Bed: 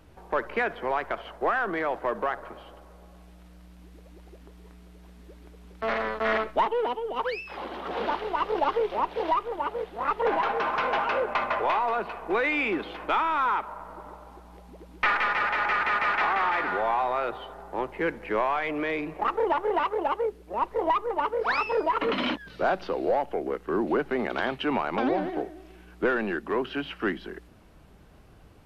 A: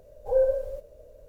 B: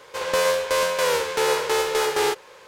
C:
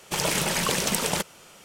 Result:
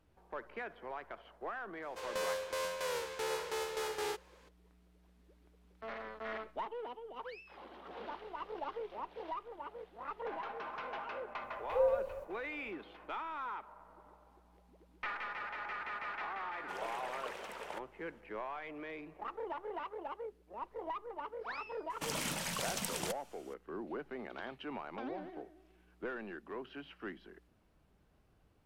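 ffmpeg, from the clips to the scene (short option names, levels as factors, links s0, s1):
-filter_complex "[3:a]asplit=2[s0][s1];[0:a]volume=0.15[s2];[1:a]highpass=f=54:p=1[s3];[s0]acrossover=split=380 2500:gain=0.0631 1 0.1[s4][s5][s6];[s4][s5][s6]amix=inputs=3:normalize=0[s7];[s1]equalizer=f=380:t=o:w=0.47:g=-9[s8];[2:a]atrim=end=2.67,asetpts=PTS-STARTPTS,volume=0.158,afade=t=in:d=0.004:c=hsin,afade=t=out:st=2.666:d=0.004:c=hsin,adelay=1820[s9];[s3]atrim=end=1.28,asetpts=PTS-STARTPTS,volume=0.398,afade=t=in:d=0.004:c=hsin,afade=t=out:st=1.276:d=0.004:c=hsin,adelay=11440[s10];[s7]atrim=end=1.64,asetpts=PTS-STARTPTS,volume=0.2,afade=t=in:d=0.004:c=hsin,afade=t=out:st=1.636:d=0.004:c=hsin,adelay=16570[s11];[s8]atrim=end=1.64,asetpts=PTS-STARTPTS,volume=0.224,afade=t=in:d=0.004:c=hsin,afade=t=out:st=1.636:d=0.004:c=hsin,adelay=21900[s12];[s2][s9][s10][s11][s12]amix=inputs=5:normalize=0"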